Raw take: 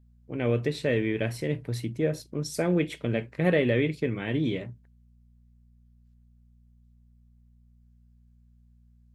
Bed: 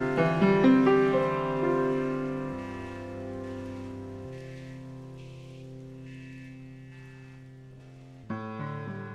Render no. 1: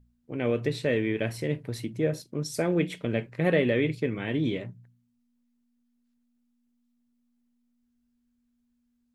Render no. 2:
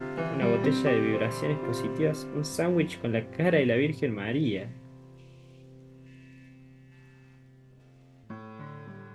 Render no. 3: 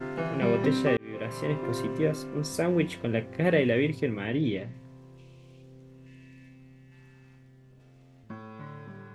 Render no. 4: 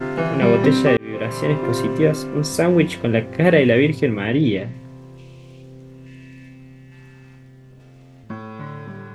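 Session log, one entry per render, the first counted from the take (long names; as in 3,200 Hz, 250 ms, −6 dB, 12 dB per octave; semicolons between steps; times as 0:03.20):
hum removal 60 Hz, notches 3
mix in bed −7 dB
0:00.97–0:01.53: fade in; 0:04.27–0:04.74: high-frequency loss of the air 83 metres
level +10 dB; brickwall limiter −2 dBFS, peak gain reduction 1.5 dB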